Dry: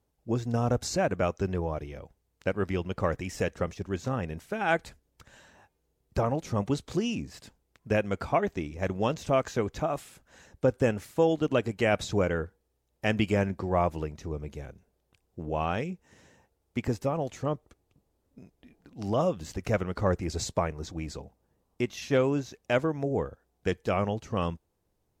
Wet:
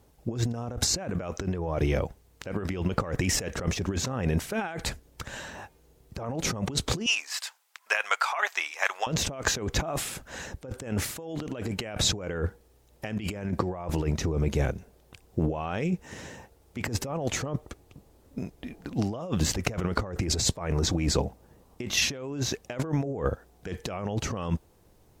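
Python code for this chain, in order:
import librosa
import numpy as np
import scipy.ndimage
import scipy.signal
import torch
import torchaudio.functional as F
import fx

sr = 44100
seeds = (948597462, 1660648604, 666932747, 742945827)

y = fx.highpass(x, sr, hz=940.0, slope=24, at=(7.06, 9.07))
y = fx.over_compress(y, sr, threshold_db=-38.0, ratio=-1.0)
y = y * librosa.db_to_amplitude(8.0)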